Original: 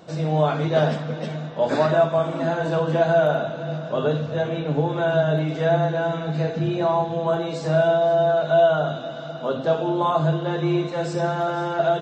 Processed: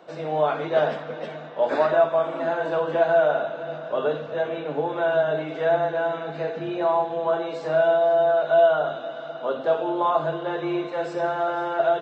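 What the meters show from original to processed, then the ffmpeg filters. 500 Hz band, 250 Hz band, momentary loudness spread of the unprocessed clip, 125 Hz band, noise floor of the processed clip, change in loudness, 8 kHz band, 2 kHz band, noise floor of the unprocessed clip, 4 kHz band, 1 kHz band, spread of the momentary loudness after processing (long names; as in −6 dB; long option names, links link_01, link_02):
−0.5 dB, −7.0 dB, 8 LU, −15.0 dB, −36 dBFS, −1.5 dB, can't be measured, −0.5 dB, −33 dBFS, −5.0 dB, 0.0 dB, 10 LU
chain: -filter_complex "[0:a]acrossover=split=310 3300:gain=0.126 1 0.224[link_01][link_02][link_03];[link_01][link_02][link_03]amix=inputs=3:normalize=0"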